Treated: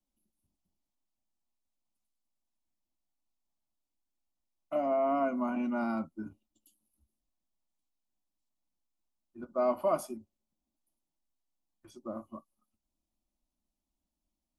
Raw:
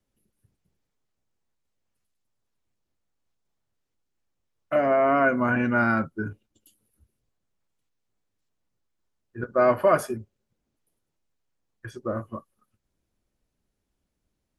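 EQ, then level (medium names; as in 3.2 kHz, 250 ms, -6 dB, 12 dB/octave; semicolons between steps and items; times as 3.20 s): static phaser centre 450 Hz, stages 6; -6.5 dB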